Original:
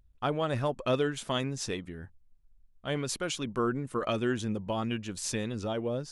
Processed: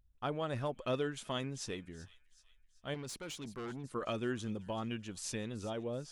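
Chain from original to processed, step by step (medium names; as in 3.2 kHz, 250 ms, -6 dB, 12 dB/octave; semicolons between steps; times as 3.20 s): feedback echo behind a high-pass 380 ms, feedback 45%, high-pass 2.4 kHz, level -16 dB; 2.94–3.84 s: valve stage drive 32 dB, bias 0.3; trim -7 dB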